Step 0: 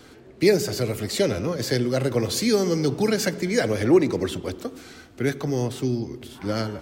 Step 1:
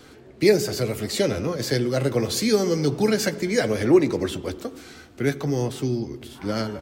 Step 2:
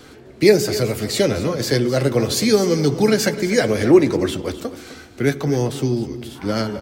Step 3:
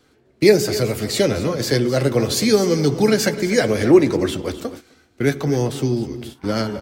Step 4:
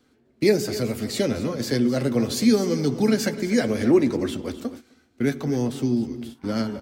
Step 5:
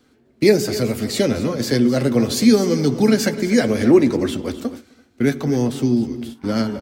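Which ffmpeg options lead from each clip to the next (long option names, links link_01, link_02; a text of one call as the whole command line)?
ffmpeg -i in.wav -filter_complex "[0:a]asplit=2[link_01][link_02];[link_02]adelay=14,volume=-11dB[link_03];[link_01][link_03]amix=inputs=2:normalize=0" out.wav
ffmpeg -i in.wav -af "aecho=1:1:255:0.188,volume=4.5dB" out.wav
ffmpeg -i in.wav -af "agate=range=-15dB:threshold=-33dB:ratio=16:detection=peak" out.wav
ffmpeg -i in.wav -af "equalizer=frequency=240:width=4.6:gain=11,volume=-7dB" out.wav
ffmpeg -i in.wav -filter_complex "[0:a]asplit=2[link_01][link_02];[link_02]adelay=338.2,volume=-30dB,highshelf=frequency=4000:gain=-7.61[link_03];[link_01][link_03]amix=inputs=2:normalize=0,volume=5dB" out.wav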